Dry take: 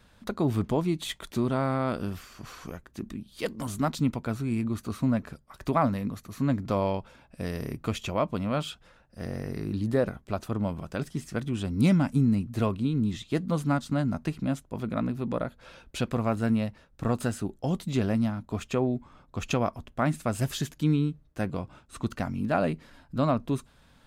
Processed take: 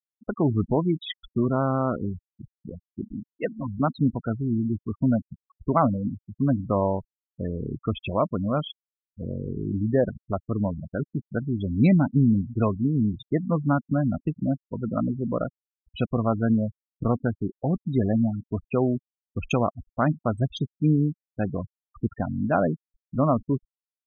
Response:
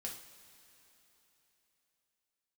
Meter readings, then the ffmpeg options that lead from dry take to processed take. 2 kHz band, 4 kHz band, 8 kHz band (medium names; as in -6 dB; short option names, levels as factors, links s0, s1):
-0.5 dB, -2.5 dB, under -10 dB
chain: -af "afftfilt=real='re*gte(hypot(re,im),0.0501)':imag='im*gte(hypot(re,im),0.0501)':win_size=1024:overlap=0.75,volume=1.5"